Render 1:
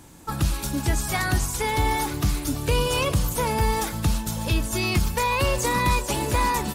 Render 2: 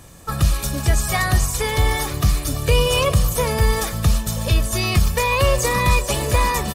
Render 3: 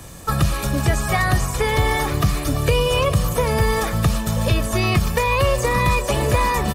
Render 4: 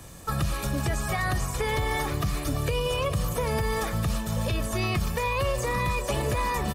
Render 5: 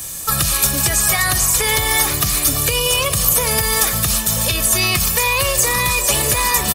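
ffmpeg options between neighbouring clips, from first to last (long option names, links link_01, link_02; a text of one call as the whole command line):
ffmpeg -i in.wav -af "aecho=1:1:1.7:0.54,volume=3.5dB" out.wav
ffmpeg -i in.wav -filter_complex "[0:a]acrossover=split=120|2700[link_01][link_02][link_03];[link_01]acompressor=threshold=-27dB:ratio=4[link_04];[link_02]acompressor=threshold=-23dB:ratio=4[link_05];[link_03]acompressor=threshold=-38dB:ratio=4[link_06];[link_04][link_05][link_06]amix=inputs=3:normalize=0,volume=5.5dB" out.wav
ffmpeg -i in.wav -af "alimiter=limit=-11dB:level=0:latency=1:release=52,volume=-6.5dB" out.wav
ffmpeg -i in.wav -filter_complex "[0:a]asplit=2[link_01][link_02];[link_02]adelay=90,highpass=300,lowpass=3400,asoftclip=type=hard:threshold=-27dB,volume=-16dB[link_03];[link_01][link_03]amix=inputs=2:normalize=0,crystalizer=i=8:c=0,volume=3.5dB" out.wav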